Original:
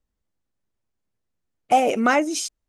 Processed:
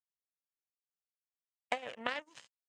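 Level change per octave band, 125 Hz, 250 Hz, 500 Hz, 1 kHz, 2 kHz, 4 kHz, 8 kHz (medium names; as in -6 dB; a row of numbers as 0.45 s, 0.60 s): no reading, -27.5 dB, -21.0 dB, -21.5 dB, -15.0 dB, -13.0 dB, -29.5 dB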